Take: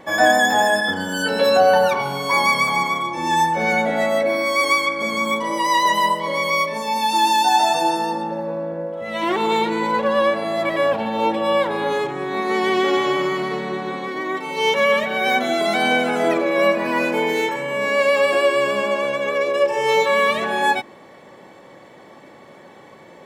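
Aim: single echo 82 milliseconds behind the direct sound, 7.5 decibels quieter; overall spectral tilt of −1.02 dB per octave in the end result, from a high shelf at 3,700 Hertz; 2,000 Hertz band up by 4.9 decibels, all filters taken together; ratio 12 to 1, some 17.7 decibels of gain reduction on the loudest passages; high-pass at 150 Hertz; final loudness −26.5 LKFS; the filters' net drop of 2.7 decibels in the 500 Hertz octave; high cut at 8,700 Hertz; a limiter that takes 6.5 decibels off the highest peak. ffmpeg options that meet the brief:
ffmpeg -i in.wav -af "highpass=150,lowpass=8700,equalizer=frequency=500:width_type=o:gain=-3.5,equalizer=frequency=2000:width_type=o:gain=7,highshelf=frequency=3700:gain=-4,acompressor=threshold=-28dB:ratio=12,alimiter=level_in=0.5dB:limit=-24dB:level=0:latency=1,volume=-0.5dB,aecho=1:1:82:0.422,volume=5dB" out.wav

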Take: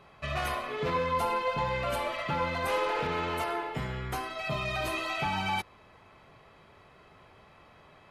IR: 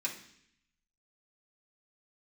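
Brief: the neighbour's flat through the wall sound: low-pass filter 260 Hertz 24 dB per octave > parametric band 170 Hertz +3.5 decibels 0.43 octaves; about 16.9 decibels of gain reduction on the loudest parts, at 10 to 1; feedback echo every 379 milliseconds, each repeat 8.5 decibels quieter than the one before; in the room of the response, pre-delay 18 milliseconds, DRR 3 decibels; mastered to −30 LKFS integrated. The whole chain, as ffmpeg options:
-filter_complex "[0:a]acompressor=threshold=-43dB:ratio=10,aecho=1:1:379|758|1137|1516:0.376|0.143|0.0543|0.0206,asplit=2[link_01][link_02];[1:a]atrim=start_sample=2205,adelay=18[link_03];[link_02][link_03]afir=irnorm=-1:irlink=0,volume=-6dB[link_04];[link_01][link_04]amix=inputs=2:normalize=0,lowpass=frequency=260:width=0.5412,lowpass=frequency=260:width=1.3066,equalizer=frequency=170:width_type=o:width=0.43:gain=3.5,volume=23dB"

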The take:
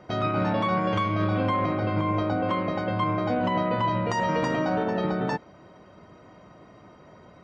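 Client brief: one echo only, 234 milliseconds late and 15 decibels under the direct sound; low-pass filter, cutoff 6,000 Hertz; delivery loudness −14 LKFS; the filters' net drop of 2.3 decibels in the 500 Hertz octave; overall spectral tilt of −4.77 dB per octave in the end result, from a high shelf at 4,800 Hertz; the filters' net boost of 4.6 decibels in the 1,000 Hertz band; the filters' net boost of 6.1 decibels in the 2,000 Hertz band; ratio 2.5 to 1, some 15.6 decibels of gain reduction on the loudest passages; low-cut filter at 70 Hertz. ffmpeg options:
ffmpeg -i in.wav -af "highpass=70,lowpass=6000,equalizer=frequency=500:width_type=o:gain=-5,equalizer=frequency=1000:width_type=o:gain=5,equalizer=frequency=2000:width_type=o:gain=7,highshelf=frequency=4800:gain=-6,acompressor=threshold=-43dB:ratio=2.5,aecho=1:1:234:0.178,volume=24dB" out.wav

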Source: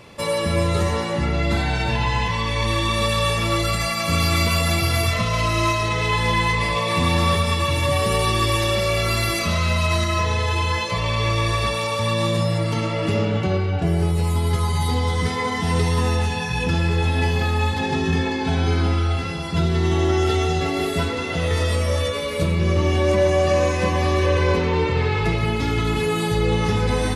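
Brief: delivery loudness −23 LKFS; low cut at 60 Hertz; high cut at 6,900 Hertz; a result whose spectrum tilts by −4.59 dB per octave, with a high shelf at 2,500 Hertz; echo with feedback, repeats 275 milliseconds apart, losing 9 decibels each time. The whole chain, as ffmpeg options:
ffmpeg -i in.wav -af "highpass=60,lowpass=6900,highshelf=frequency=2500:gain=7,aecho=1:1:275|550|825|1100:0.355|0.124|0.0435|0.0152,volume=-4dB" out.wav

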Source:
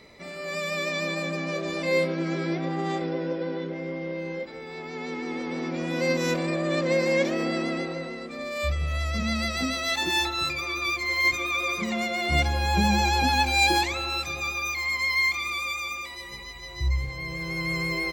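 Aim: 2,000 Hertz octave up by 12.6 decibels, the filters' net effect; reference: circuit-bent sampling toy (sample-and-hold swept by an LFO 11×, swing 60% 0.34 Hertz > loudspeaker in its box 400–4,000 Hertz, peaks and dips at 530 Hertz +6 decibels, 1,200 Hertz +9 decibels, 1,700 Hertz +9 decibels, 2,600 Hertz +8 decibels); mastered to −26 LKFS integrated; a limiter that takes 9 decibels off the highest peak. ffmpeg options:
ffmpeg -i in.wav -af "equalizer=frequency=2000:width_type=o:gain=7,alimiter=limit=-16.5dB:level=0:latency=1,acrusher=samples=11:mix=1:aa=0.000001:lfo=1:lforange=6.6:lforate=0.34,highpass=400,equalizer=frequency=530:width_type=q:width=4:gain=6,equalizer=frequency=1200:width_type=q:width=4:gain=9,equalizer=frequency=1700:width_type=q:width=4:gain=9,equalizer=frequency=2600:width_type=q:width=4:gain=8,lowpass=frequency=4000:width=0.5412,lowpass=frequency=4000:width=1.3066,volume=-5.5dB" out.wav

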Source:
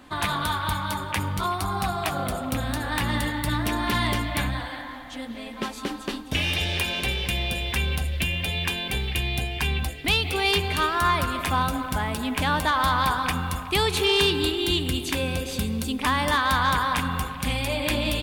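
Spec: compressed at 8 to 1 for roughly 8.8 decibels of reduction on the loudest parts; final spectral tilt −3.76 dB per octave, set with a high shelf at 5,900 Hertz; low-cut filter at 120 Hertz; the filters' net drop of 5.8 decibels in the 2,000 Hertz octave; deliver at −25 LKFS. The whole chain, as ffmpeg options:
ffmpeg -i in.wav -af "highpass=120,equalizer=frequency=2000:width_type=o:gain=-9,highshelf=frequency=5900:gain=5.5,acompressor=threshold=-27dB:ratio=8,volume=6dB" out.wav

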